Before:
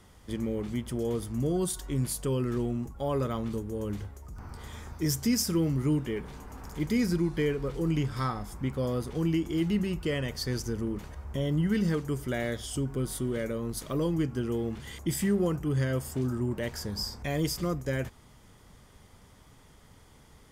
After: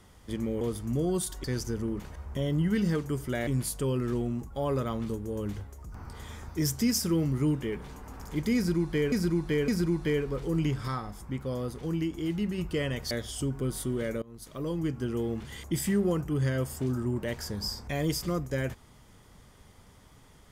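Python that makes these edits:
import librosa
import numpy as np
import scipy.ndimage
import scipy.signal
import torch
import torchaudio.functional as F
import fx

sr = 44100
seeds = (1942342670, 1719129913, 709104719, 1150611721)

y = fx.edit(x, sr, fx.cut(start_s=0.61, length_s=0.47),
    fx.repeat(start_s=7.0, length_s=0.56, count=3),
    fx.clip_gain(start_s=8.2, length_s=1.7, db=-3.0),
    fx.move(start_s=10.43, length_s=2.03, to_s=1.91),
    fx.fade_in_from(start_s=13.57, length_s=1.15, curve='qsin', floor_db=-22.0), tone=tone)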